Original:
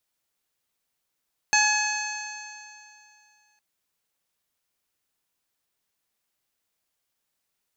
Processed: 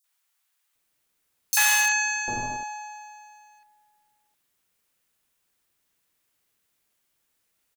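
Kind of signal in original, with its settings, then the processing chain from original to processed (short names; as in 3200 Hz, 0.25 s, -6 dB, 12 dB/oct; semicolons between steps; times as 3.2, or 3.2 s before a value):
stretched partials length 2.06 s, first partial 841 Hz, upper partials 2/0.5/-18.5/-2/-15.5/0.5/-12.5 dB, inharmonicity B 0.003, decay 2.52 s, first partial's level -23 dB
in parallel at +0.5 dB: wrapped overs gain 18 dB; on the sum: three bands offset in time highs, mids, lows 40/750 ms, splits 760/4900 Hz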